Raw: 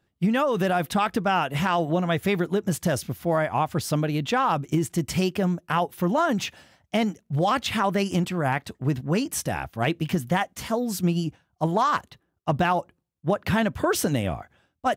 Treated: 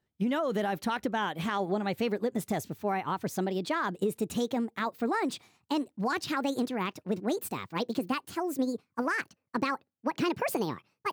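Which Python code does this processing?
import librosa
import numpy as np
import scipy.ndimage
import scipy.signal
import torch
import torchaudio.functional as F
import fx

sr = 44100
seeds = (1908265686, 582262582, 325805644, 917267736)

y = fx.speed_glide(x, sr, from_pct=108, to_pct=161)
y = fx.dynamic_eq(y, sr, hz=370.0, q=1.0, threshold_db=-34.0, ratio=4.0, max_db=5)
y = y * librosa.db_to_amplitude(-9.0)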